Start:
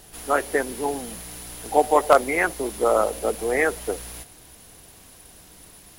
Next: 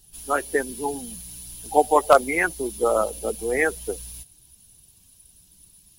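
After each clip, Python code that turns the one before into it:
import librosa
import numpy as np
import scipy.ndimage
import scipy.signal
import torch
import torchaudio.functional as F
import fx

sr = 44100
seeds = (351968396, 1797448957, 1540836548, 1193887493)

y = fx.bin_expand(x, sr, power=1.5)
y = F.gain(torch.from_numpy(y), 2.0).numpy()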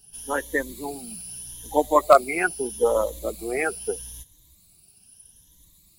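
y = fx.spec_ripple(x, sr, per_octave=1.1, drift_hz=0.79, depth_db=13)
y = F.gain(torch.from_numpy(y), -3.0).numpy()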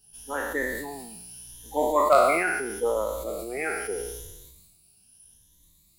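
y = fx.spec_trails(x, sr, decay_s=0.75)
y = fx.sustainer(y, sr, db_per_s=37.0)
y = F.gain(torch.from_numpy(y), -7.0).numpy()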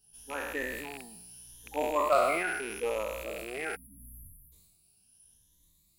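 y = fx.rattle_buzz(x, sr, strikes_db=-44.0, level_db=-23.0)
y = fx.spec_erase(y, sr, start_s=3.76, length_s=0.76, low_hz=300.0, high_hz=10000.0)
y = F.gain(torch.from_numpy(y), -6.5).numpy()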